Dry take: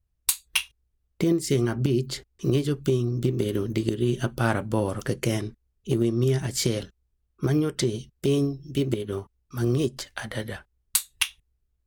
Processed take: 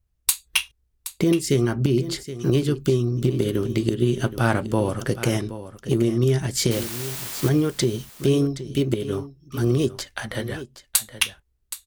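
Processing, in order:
0:06.71–0:07.49: bit-depth reduction 6 bits, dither triangular
on a send: single-tap delay 772 ms −13.5 dB
on the sum: level +3 dB

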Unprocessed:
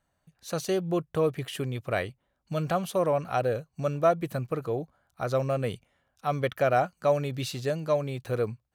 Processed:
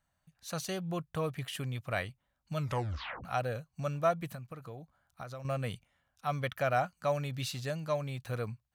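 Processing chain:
0:02.58: tape stop 0.66 s
parametric band 390 Hz −11 dB 1.1 octaves
0:04.30–0:05.45: downward compressor 6 to 1, threshold −39 dBFS, peak gain reduction 12.5 dB
level −2.5 dB

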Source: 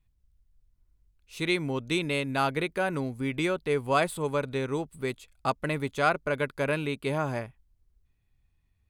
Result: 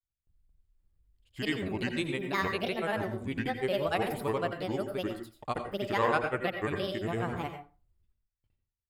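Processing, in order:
noise gate with hold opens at −59 dBFS
granular cloud, pitch spread up and down by 7 semitones
parametric band 5,900 Hz −13.5 dB 0.21 octaves
convolution reverb RT60 0.35 s, pre-delay 78 ms, DRR 6 dB
level −3 dB

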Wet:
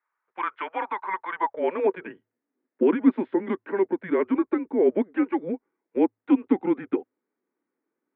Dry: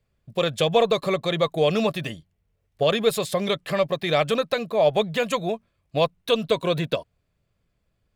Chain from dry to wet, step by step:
mains-hum notches 60/120/180/240/300 Hz
single-sideband voice off tune −190 Hz 320–2,200 Hz
high-pass filter sweep 1,100 Hz → 280 Hz, 0:01.26–0:02.14
speech leveller within 4 dB 2 s
level −4.5 dB

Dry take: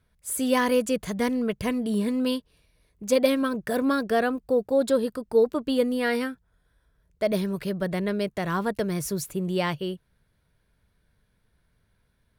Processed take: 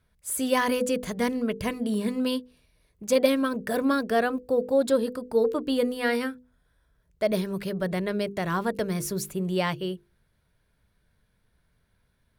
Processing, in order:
mains-hum notches 50/100/150/200/250/300/350/400/450/500 Hz

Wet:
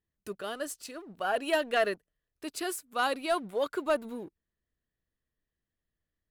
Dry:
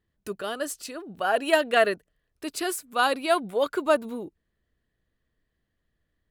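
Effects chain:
leveller curve on the samples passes 1
level −9 dB

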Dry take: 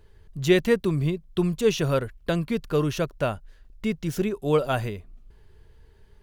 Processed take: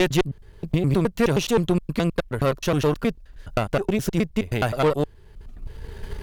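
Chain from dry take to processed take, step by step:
slices reordered back to front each 105 ms, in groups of 6
camcorder AGC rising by 19 dB per second
tube saturation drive 19 dB, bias 0.75
level +6 dB

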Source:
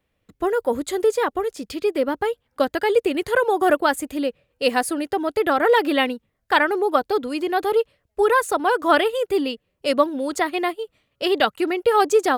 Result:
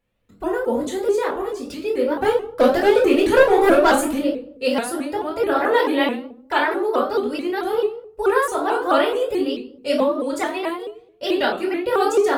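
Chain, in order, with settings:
0:02.18–0:04.19: leveller curve on the samples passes 2
convolution reverb RT60 0.60 s, pre-delay 3 ms, DRR −4.5 dB
pitch modulation by a square or saw wave saw up 4.6 Hz, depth 160 cents
level −9 dB

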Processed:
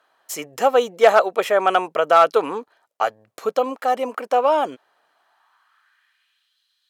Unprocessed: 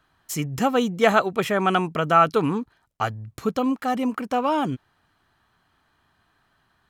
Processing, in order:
asymmetric clip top −11 dBFS
high-pass filter sweep 540 Hz → 3,800 Hz, 0:05.08–0:06.58
level +1 dB

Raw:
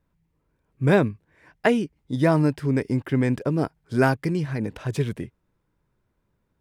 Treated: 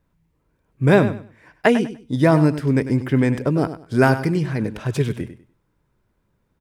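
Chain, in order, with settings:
repeating echo 98 ms, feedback 23%, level −12 dB
level +4 dB

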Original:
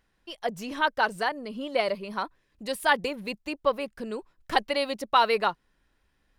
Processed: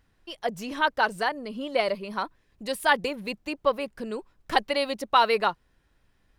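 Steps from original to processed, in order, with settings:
background noise brown −68 dBFS
level +1 dB

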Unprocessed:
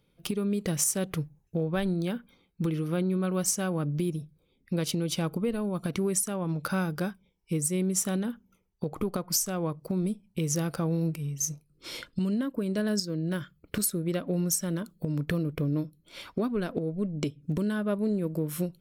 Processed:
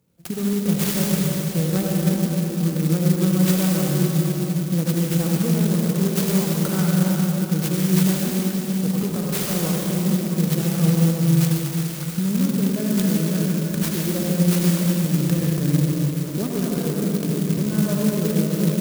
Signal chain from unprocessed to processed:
high-pass filter 51 Hz
parametric band 160 Hz +6.5 dB 0.77 octaves
mains-hum notches 50/100/150 Hz
convolution reverb RT60 4.3 s, pre-delay 67 ms, DRR −4 dB
converter with an unsteady clock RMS 0.12 ms

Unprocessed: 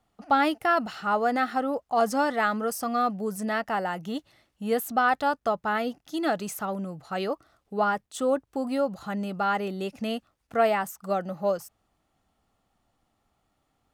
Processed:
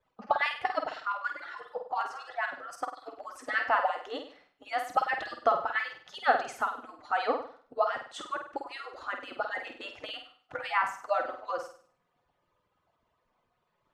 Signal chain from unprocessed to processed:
harmonic-percussive split with one part muted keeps percussive
tuned comb filter 250 Hz, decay 0.17 s, harmonics all, mix 50%
0:00.89–0:03.06: output level in coarse steps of 13 dB
low-pass filter 5,400 Hz 12 dB per octave
parametric band 1,100 Hz +10 dB 3 octaves
flutter between parallel walls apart 8.5 metres, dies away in 0.47 s

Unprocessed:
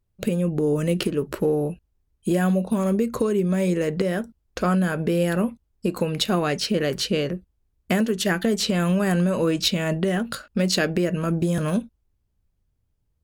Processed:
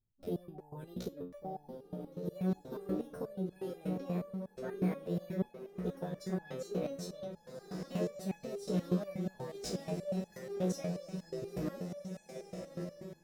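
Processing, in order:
drawn EQ curve 120 Hz 0 dB, 2,100 Hz −14 dB, 3,700 Hz −11 dB
on a send: feedback delay with all-pass diffusion 1,512 ms, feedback 52%, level −5.5 dB
on the sum: formants moved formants +5 semitones
step-sequenced resonator 8.3 Hz 61–850 Hz
level −2 dB

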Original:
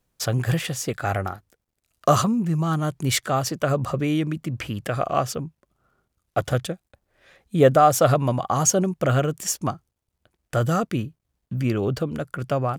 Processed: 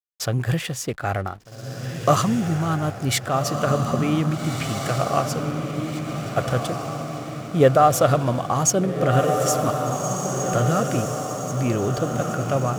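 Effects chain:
feedback delay with all-pass diffusion 1,617 ms, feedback 54%, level −4.5 dB
slack as between gear wheels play −39 dBFS

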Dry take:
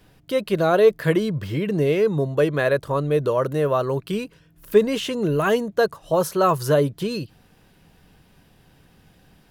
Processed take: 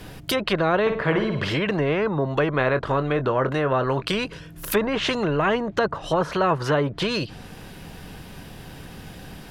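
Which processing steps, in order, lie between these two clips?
0:00.81–0:01.53: flutter between parallel walls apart 9.5 metres, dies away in 0.36 s
treble cut that deepens with the level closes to 1,300 Hz, closed at −17 dBFS
0:02.58–0:04.06: double-tracking delay 23 ms −12 dB
every bin compressed towards the loudest bin 2 to 1
level −4 dB

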